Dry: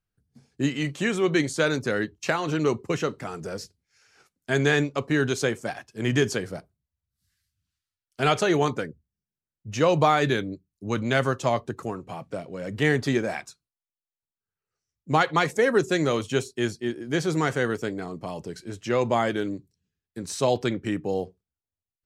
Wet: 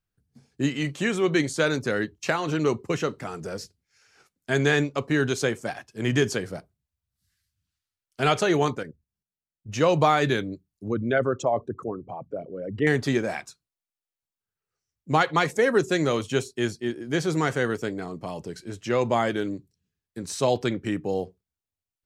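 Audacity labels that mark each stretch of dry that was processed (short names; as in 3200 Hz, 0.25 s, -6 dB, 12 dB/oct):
8.750000	9.690000	level quantiser steps of 10 dB
10.880000	12.870000	formant sharpening exponent 2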